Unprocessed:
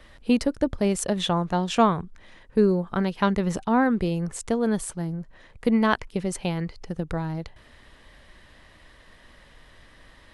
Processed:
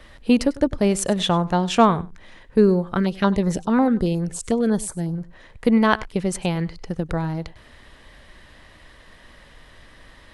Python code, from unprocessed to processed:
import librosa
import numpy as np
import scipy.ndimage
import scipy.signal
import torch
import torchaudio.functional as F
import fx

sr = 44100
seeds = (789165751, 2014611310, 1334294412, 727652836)

y = x + 10.0 ** (-20.0 / 20.0) * np.pad(x, (int(98 * sr / 1000.0), 0))[:len(x)]
y = fx.filter_held_notch(y, sr, hz=11.0, low_hz=790.0, high_hz=2900.0, at=(2.97, 5.18))
y = F.gain(torch.from_numpy(y), 4.0).numpy()